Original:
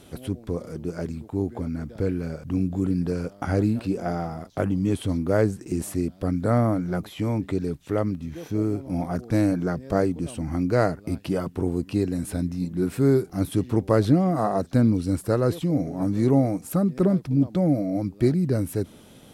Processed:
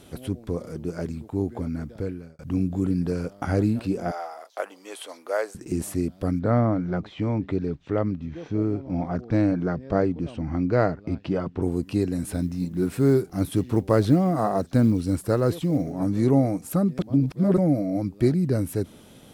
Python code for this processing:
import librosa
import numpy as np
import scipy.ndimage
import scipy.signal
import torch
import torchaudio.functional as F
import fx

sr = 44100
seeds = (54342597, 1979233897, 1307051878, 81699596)

y = fx.highpass(x, sr, hz=550.0, slope=24, at=(4.11, 5.55))
y = fx.gaussian_blur(y, sr, sigma=1.8, at=(6.39, 11.62))
y = fx.quant_companded(y, sr, bits=8, at=(12.2, 15.92))
y = fx.edit(y, sr, fx.fade_out_span(start_s=1.8, length_s=0.59),
    fx.reverse_span(start_s=16.99, length_s=0.59), tone=tone)